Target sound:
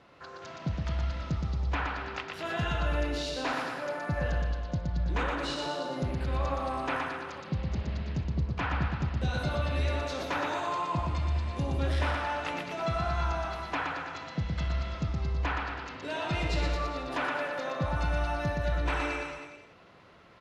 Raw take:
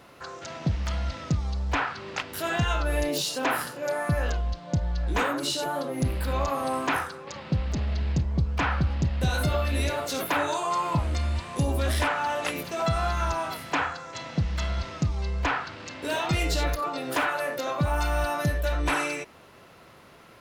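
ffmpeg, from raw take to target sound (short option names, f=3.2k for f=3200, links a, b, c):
-filter_complex "[0:a]lowpass=4.7k,asplit=2[a][b];[b]aecho=0:1:120|228|325.2|412.7|491.4:0.631|0.398|0.251|0.158|0.1[c];[a][c]amix=inputs=2:normalize=0,volume=-6.5dB"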